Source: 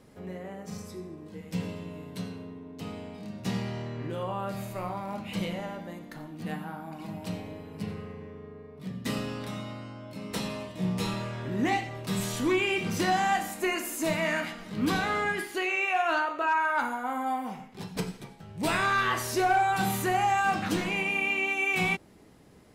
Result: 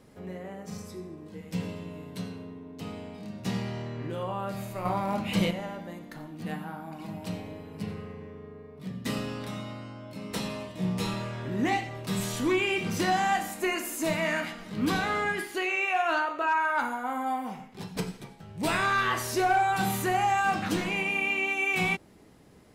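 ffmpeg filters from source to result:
ffmpeg -i in.wav -filter_complex "[0:a]asettb=1/sr,asplit=3[link_01][link_02][link_03];[link_01]atrim=end=4.854[link_04];[link_02]atrim=start=4.85:end=5.51,asetpts=PTS-STARTPTS,afade=type=in:duration=0.004:curve=qsin,afade=type=out:start_time=0.656:duration=0.004:curve=qsin,acontrast=59[link_05];[link_03]atrim=start=5.506[link_06];[link_04][link_05]acrossfade=duration=0.004:curve1=hsin:curve2=qsin[link_07];[link_07][link_06]acrossfade=duration=0.004:curve1=qsin:curve2=hsin" out.wav

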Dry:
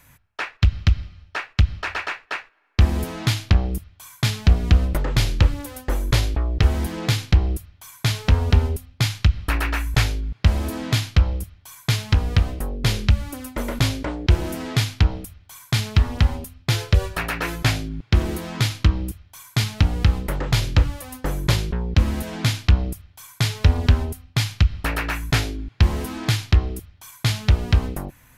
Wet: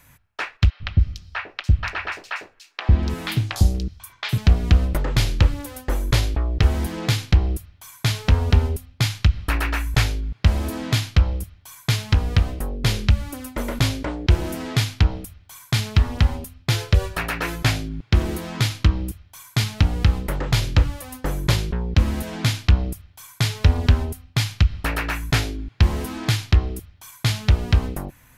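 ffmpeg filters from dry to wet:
ffmpeg -i in.wav -filter_complex "[0:a]asettb=1/sr,asplit=3[link_01][link_02][link_03];[link_01]atrim=end=0.704[link_04];[link_02]atrim=start=0.7:end=4.38,asetpts=PTS-STARTPTS,afade=type=in:duration=0.004:curve=qsin,afade=type=out:start_time=3.676:duration=0.004:curve=qsin,acrossover=split=580|4500[link_05][link_06][link_07];[link_05]adelay=100[link_08];[link_07]adelay=290[link_09];[link_08][link_06][link_09]amix=inputs=3:normalize=0,atrim=end_sample=162288[link_10];[link_03]atrim=start=4.376[link_11];[link_04][link_10]acrossfade=duration=0.004:curve1=hsin:curve2=qsin[link_12];[link_12][link_11]acrossfade=duration=0.004:curve1=qsin:curve2=hsin" out.wav

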